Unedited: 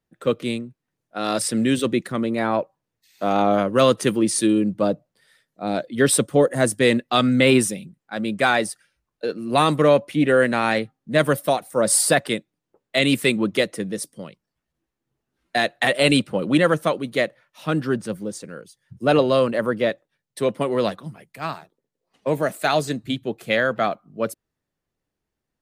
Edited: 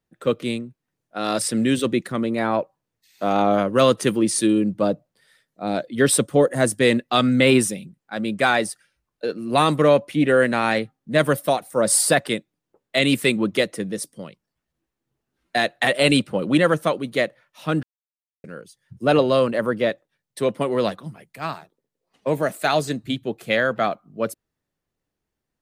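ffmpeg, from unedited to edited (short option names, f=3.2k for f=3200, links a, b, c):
-filter_complex "[0:a]asplit=3[a][b][c];[a]atrim=end=17.83,asetpts=PTS-STARTPTS,afade=t=out:st=17.826:d=0.004:c=hsin[d];[b]atrim=start=17.83:end=18.44,asetpts=PTS-STARTPTS,volume=0[e];[c]atrim=start=18.44,asetpts=PTS-STARTPTS,afade=t=in:d=0.004:c=hsin[f];[d][e][f]concat=n=3:v=0:a=1"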